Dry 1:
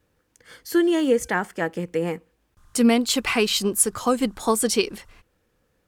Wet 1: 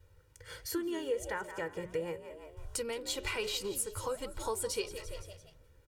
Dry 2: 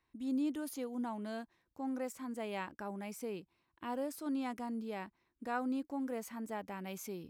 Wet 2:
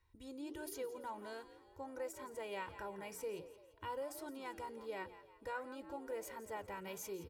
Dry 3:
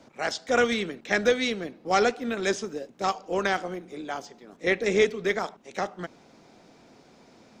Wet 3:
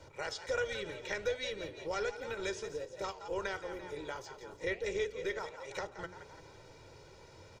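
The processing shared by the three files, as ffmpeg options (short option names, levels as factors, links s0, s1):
-filter_complex "[0:a]lowshelf=f=140:t=q:w=1.5:g=9.5,bandreject=f=60:t=h:w=6,bandreject=f=120:t=h:w=6,bandreject=f=180:t=h:w=6,bandreject=f=240:t=h:w=6,bandreject=f=300:t=h:w=6,bandreject=f=360:t=h:w=6,bandreject=f=420:t=h:w=6,asplit=5[s0][s1][s2][s3][s4];[s1]adelay=170,afreqshift=66,volume=0.178[s5];[s2]adelay=340,afreqshift=132,volume=0.0767[s6];[s3]adelay=510,afreqshift=198,volume=0.0327[s7];[s4]adelay=680,afreqshift=264,volume=0.0141[s8];[s0][s5][s6][s7][s8]amix=inputs=5:normalize=0,acompressor=threshold=0.0112:ratio=2.5,aecho=1:1:2.1:0.74,flanger=delay=2.6:depth=8.6:regen=87:speed=1.4:shape=sinusoidal,volume=1.26"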